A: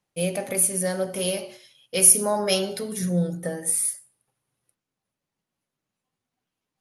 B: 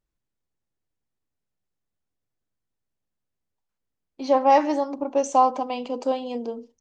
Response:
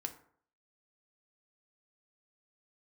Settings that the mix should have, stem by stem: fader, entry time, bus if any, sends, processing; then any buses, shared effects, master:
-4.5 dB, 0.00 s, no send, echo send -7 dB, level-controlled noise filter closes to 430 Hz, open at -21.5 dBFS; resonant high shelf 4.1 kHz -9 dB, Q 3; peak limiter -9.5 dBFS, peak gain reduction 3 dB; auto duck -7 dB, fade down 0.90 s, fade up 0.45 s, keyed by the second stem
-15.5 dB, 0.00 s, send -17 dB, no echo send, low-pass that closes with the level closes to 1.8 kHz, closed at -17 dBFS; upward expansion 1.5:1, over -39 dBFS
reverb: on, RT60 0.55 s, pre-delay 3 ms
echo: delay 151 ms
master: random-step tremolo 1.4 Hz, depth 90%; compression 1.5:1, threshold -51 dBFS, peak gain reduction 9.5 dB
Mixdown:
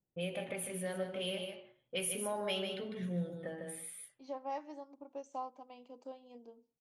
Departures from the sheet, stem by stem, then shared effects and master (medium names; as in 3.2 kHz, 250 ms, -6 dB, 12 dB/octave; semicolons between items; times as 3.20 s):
stem B: missing low-pass that closes with the level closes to 1.8 kHz, closed at -17 dBFS; master: missing random-step tremolo 1.4 Hz, depth 90%